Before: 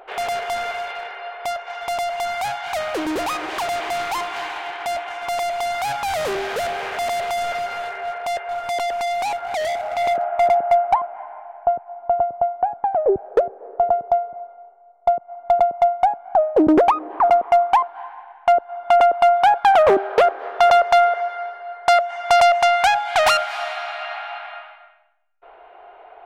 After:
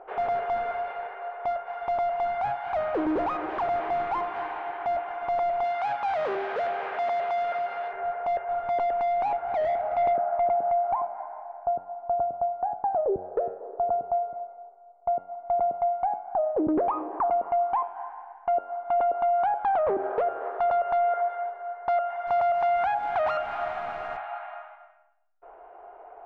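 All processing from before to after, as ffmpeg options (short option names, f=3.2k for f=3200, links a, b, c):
-filter_complex "[0:a]asettb=1/sr,asplit=3[a][b][c];[a]atrim=end=5.644[d];[b]atrim=start=5.64:end=7.93,asetpts=PTS-STARTPTS,afade=t=in:d=0.004:c=qsin,afade=t=out:st=2.286:d=0.004:c=qsin,lowpass=4.7k,aemphasis=mode=production:type=riaa[e];[c]atrim=start=7.926[f];[d][e]acrossfade=d=0.004:c1=hsin:c2=qsin[g];[g][f]acrossfade=d=0.004:c1=qsin:c2=hsin,asettb=1/sr,asplit=3[h][i][j];[h]atrim=end=22.274[k];[i]atrim=start=22.27:end=24.17,asetpts=PTS-STARTPTS,afade=t=in:d=0.004:c=qsin,afade=t=out:st=1.896:d=0.004:c=qsin,highpass=f=40:w=0.5412,highpass=f=40:w=1.3066,acrusher=bits=6:dc=4:mix=0:aa=0.000001[l];[j]atrim=start=24.166[m];[k][l]acrossfade=d=0.004:c1=hsin:c2=qsin[n];[n][m]acrossfade=d=0.004:c1=qsin:c2=hsin,lowpass=1.2k,bandreject=f=92.99:t=h:w=4,bandreject=f=185.98:t=h:w=4,bandreject=f=278.97:t=h:w=4,bandreject=f=371.96:t=h:w=4,bandreject=f=464.95:t=h:w=4,bandreject=f=557.94:t=h:w=4,bandreject=f=650.93:t=h:w=4,bandreject=f=743.92:t=h:w=4,bandreject=f=836.91:t=h:w=4,bandreject=f=929.9:t=h:w=4,bandreject=f=1.02289k:t=h:w=4,bandreject=f=1.11588k:t=h:w=4,bandreject=f=1.20887k:t=h:w=4,bandreject=f=1.30186k:t=h:w=4,bandreject=f=1.39485k:t=h:w=4,bandreject=f=1.48784k:t=h:w=4,bandreject=f=1.58083k:t=h:w=4,bandreject=f=1.67382k:t=h:w=4,bandreject=f=1.76681k:t=h:w=4,bandreject=f=1.8598k:t=h:w=4,bandreject=f=1.95279k:t=h:w=4,bandreject=f=2.04578k:t=h:w=4,bandreject=f=2.13877k:t=h:w=4,bandreject=f=2.23176k:t=h:w=4,bandreject=f=2.32475k:t=h:w=4,bandreject=f=2.41774k:t=h:w=4,bandreject=f=2.51073k:t=h:w=4,bandreject=f=2.60372k:t=h:w=4,bandreject=f=2.69671k:t=h:w=4,bandreject=f=2.7897k:t=h:w=4,bandreject=f=2.88269k:t=h:w=4,bandreject=f=2.97568k:t=h:w=4,bandreject=f=3.06867k:t=h:w=4,bandreject=f=3.16166k:t=h:w=4,bandreject=f=3.25465k:t=h:w=4,bandreject=f=3.34764k:t=h:w=4,bandreject=f=3.44063k:t=h:w=4,alimiter=limit=-17.5dB:level=0:latency=1:release=95,volume=-1.5dB"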